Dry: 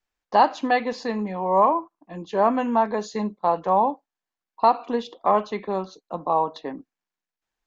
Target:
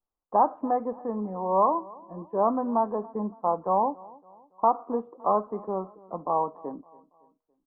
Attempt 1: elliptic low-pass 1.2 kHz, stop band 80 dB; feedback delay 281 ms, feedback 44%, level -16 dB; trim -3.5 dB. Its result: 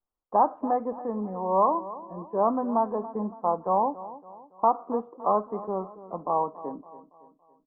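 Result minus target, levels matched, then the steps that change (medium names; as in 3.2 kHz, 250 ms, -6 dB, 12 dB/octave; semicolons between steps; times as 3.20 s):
echo-to-direct +6.5 dB
change: feedback delay 281 ms, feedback 44%, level -22.5 dB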